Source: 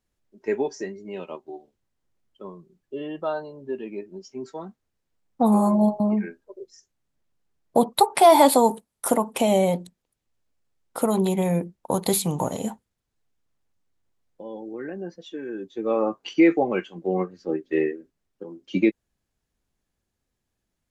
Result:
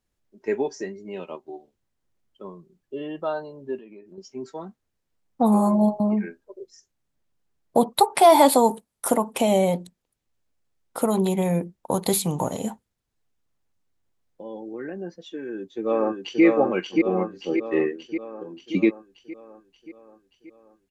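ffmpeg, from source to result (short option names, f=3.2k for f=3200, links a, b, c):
-filter_complex "[0:a]asettb=1/sr,asplit=3[a][b][c];[a]atrim=end=3.784[d];[b]atrim=start=3.78:end=4.18,asetpts=PTS-STARTPTS,afade=t=in:d=0.004:c=qsin,afade=t=out:st=0.396:d=0.004:c=qsin,acompressor=threshold=-42dB:ratio=6:attack=3.2:release=140:knee=1:detection=peak[e];[c]atrim=start=4.176[f];[d][e]acrossfade=d=0.004:c1=hsin:c2=qsin[g];[g][f]acrossfade=d=0.004:c1=qsin:c2=hsin,asplit=2[h][i];[i]afade=t=in:st=15.31:d=0.01,afade=t=out:st=16.43:d=0.01,aecho=0:1:580|1160|1740|2320|2900|3480|4060|4640|5220:0.794328|0.476597|0.285958|0.171575|0.102945|0.061767|0.0370602|0.0222361|0.0133417[j];[h][j]amix=inputs=2:normalize=0"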